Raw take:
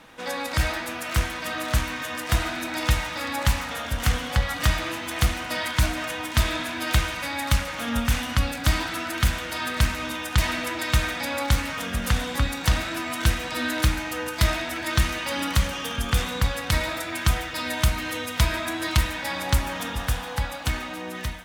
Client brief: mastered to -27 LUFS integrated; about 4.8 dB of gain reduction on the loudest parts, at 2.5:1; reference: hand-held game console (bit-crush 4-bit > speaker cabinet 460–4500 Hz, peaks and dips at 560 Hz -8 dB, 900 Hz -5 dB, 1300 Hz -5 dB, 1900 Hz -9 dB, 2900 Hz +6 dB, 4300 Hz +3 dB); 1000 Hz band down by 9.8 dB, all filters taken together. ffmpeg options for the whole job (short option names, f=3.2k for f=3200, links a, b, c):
-af "equalizer=f=1k:t=o:g=-6,acompressor=threshold=-22dB:ratio=2.5,acrusher=bits=3:mix=0:aa=0.000001,highpass=460,equalizer=f=560:t=q:w=4:g=-8,equalizer=f=900:t=q:w=4:g=-5,equalizer=f=1.3k:t=q:w=4:g=-5,equalizer=f=1.9k:t=q:w=4:g=-9,equalizer=f=2.9k:t=q:w=4:g=6,equalizer=f=4.3k:t=q:w=4:g=3,lowpass=f=4.5k:w=0.5412,lowpass=f=4.5k:w=1.3066,volume=6dB"